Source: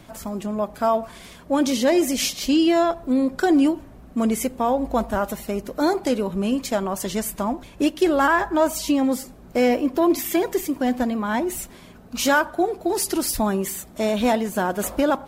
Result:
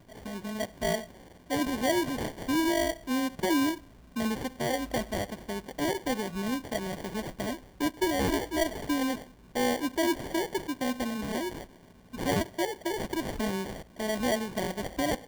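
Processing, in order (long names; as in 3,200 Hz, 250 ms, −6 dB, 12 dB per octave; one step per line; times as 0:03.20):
sample-rate reduction 1,300 Hz, jitter 0%
level −9 dB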